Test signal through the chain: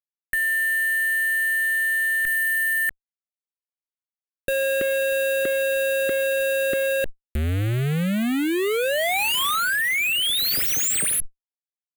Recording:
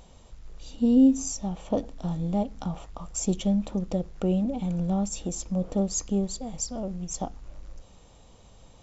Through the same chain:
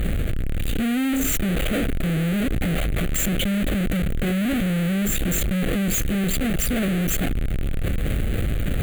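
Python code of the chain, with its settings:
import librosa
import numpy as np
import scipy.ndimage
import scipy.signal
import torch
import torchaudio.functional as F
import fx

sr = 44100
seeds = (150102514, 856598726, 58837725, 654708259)

y = fx.halfwave_hold(x, sr)
y = fx.dynamic_eq(y, sr, hz=350.0, q=1.1, threshold_db=-35.0, ratio=4.0, max_db=4)
y = fx.fuzz(y, sr, gain_db=46.0, gate_db=-55.0)
y = fx.fixed_phaser(y, sr, hz=2300.0, stages=4)
y = fx.env_flatten(y, sr, amount_pct=100)
y = F.gain(torch.from_numpy(y), -8.5).numpy()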